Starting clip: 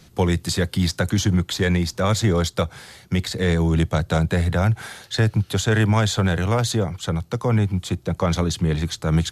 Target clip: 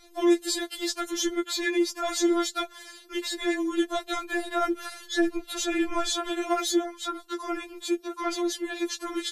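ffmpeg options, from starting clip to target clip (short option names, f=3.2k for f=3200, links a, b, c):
-filter_complex "[0:a]asettb=1/sr,asplit=3[a][b][c];[a]atrim=end=4.694[d];[b]atrim=start=4.69:end=6.08,asetpts=PTS-STARTPTS,afade=t=in:d=0.004:c=qsin,afade=t=out:st=1.386:d=0.004:c=qsin,lowshelf=f=180:g=11[e];[c]atrim=start=6.076[f];[d][e]acrossfade=d=0.004:c1=hsin:c2=qsin[g];[g][f]acrossfade=d=0.004:c1=qsin:c2=hsin,asoftclip=type=tanh:threshold=-7dB,afftfilt=real='re*4*eq(mod(b,16),0)':imag='im*4*eq(mod(b,16),0)':win_size=2048:overlap=0.75"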